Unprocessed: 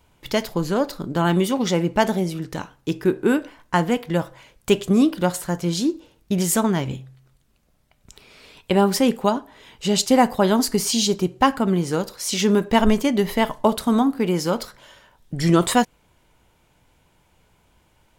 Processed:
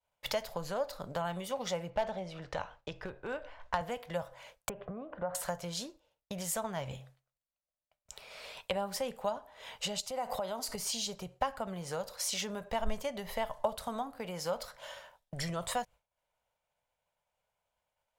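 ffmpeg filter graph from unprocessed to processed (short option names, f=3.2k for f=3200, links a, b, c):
-filter_complex "[0:a]asettb=1/sr,asplit=3[a][b][c];[a]atrim=end=1.904[d];[b]atrim=start=1.9:end=3.81,asetpts=PTS-STARTPTS,afade=t=in:d=0.004:c=qsin,afade=t=out:st=1.906:d=0.004:c=qsin,lowpass=4.1k,asubboost=boost=9.5:cutoff=75,asoftclip=type=hard:threshold=-12dB[e];[c]atrim=start=3.806[f];[d][e]acrossfade=d=0.004:c1=hsin:c2=qsin[g];[g][f]acrossfade=d=0.004:c1=qsin:c2=hsin,asettb=1/sr,asplit=3[h][i][j];[h]atrim=end=4.694[k];[i]atrim=start=4.69:end=5.35,asetpts=PTS-STARTPTS,afade=t=in:d=0.004:c=qsin,afade=t=out:st=0.656:d=0.004:c=qsin,lowpass=f=1.7k:w=0.5412,lowpass=f=1.7k:w=1.3066,acompressor=threshold=-22dB:ratio=3:attack=3.2:release=140:knee=1:detection=peak[l];[j]atrim=start=5.346[m];[k][l]acrossfade=d=0.004:c1=hsin:c2=qsin[n];[n][m]acrossfade=d=0.004:c1=qsin:c2=hsin,asettb=1/sr,asplit=3[o][p][q];[o]atrim=end=10.004[r];[p]atrim=start=10:end=10.75,asetpts=PTS-STARTPTS,afade=t=in:d=0.004:c=qsin,afade=t=out:st=0.746:d=0.004:c=qsin,bandreject=f=1.7k:w=7.5,acompressor=threshold=-25dB:ratio=6:attack=3.2:release=140:knee=1:detection=peak[s];[q]atrim=start=10.746[t];[r][s]acrossfade=d=0.004:c1=hsin:c2=qsin[u];[u][t]acrossfade=d=0.004:c1=qsin:c2=hsin,acrossover=split=120[v][w];[w]acompressor=threshold=-33dB:ratio=6[x];[v][x]amix=inputs=2:normalize=0,lowshelf=f=440:t=q:w=3:g=-9,agate=range=-33dB:threshold=-47dB:ratio=3:detection=peak"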